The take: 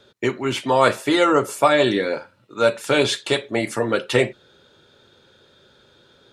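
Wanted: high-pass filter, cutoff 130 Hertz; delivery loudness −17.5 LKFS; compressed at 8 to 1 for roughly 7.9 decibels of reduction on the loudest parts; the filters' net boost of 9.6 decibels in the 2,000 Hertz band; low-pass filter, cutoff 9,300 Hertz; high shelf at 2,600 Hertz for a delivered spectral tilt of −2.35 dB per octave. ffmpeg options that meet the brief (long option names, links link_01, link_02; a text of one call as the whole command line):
ffmpeg -i in.wav -af "highpass=130,lowpass=9300,equalizer=frequency=2000:width_type=o:gain=8.5,highshelf=frequency=2600:gain=7.5,acompressor=threshold=-16dB:ratio=8,volume=3.5dB" out.wav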